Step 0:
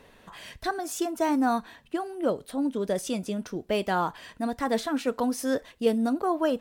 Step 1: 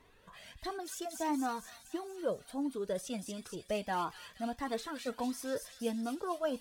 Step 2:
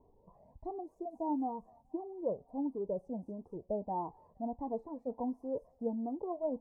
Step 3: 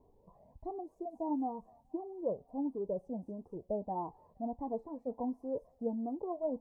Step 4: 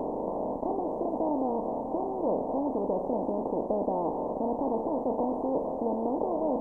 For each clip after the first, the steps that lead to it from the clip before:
thin delay 0.234 s, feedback 65%, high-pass 3300 Hz, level -3 dB; cascading flanger rising 1.5 Hz; gain -4.5 dB
elliptic low-pass 910 Hz, stop band 40 dB
notch 920 Hz, Q 27
per-bin compression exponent 0.2

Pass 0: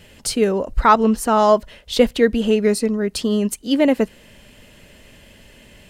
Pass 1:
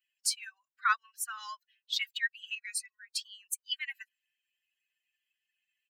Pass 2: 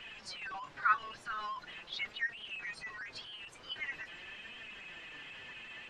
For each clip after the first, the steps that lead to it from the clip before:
per-bin expansion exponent 2; steep high-pass 1300 Hz 48 dB/oct; comb 2.7 ms, depth 50%; gain -4.5 dB
zero-crossing step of -34 dBFS; flange 0.44 Hz, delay 4.1 ms, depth 4.7 ms, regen +56%; tape spacing loss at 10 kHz 36 dB; gain +6 dB

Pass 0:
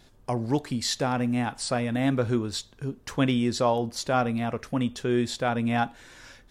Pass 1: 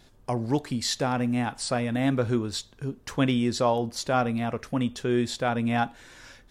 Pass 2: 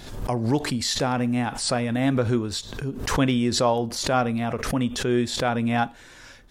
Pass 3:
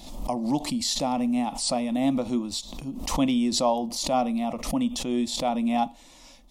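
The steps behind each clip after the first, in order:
nothing audible
backwards sustainer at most 66 dB/s; gain +2 dB
fixed phaser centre 420 Hz, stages 6

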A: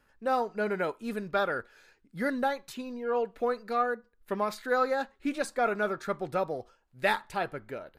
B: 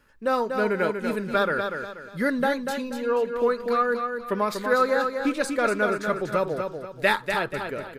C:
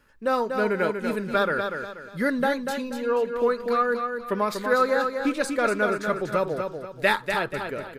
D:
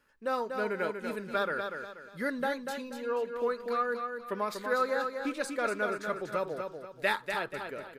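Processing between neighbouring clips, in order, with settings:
bell 740 Hz -11.5 dB 0.21 oct; on a send: feedback echo 0.241 s, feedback 35%, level -6 dB; on the sum: gain +6 dB
nothing audible
low shelf 180 Hz -9 dB; gain -7 dB

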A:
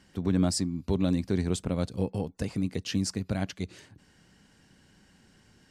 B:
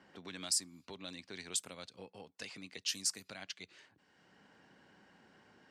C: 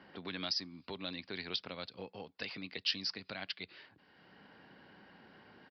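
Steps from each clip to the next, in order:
differentiator; low-pass opened by the level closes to 740 Hz, open at -38 dBFS; three-band squash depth 70%; gain +5 dB
downsampling 11025 Hz; gain +5 dB

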